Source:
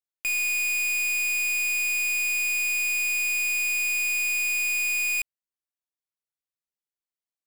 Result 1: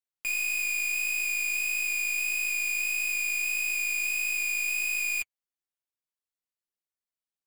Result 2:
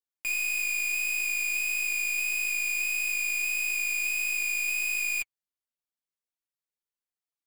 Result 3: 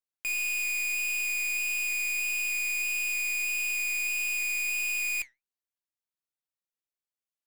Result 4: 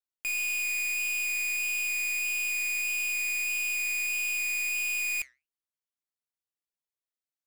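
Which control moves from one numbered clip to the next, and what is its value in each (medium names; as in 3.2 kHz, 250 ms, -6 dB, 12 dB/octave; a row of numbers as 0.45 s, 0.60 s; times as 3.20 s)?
flange, regen: -23%, +21%, +77%, -83%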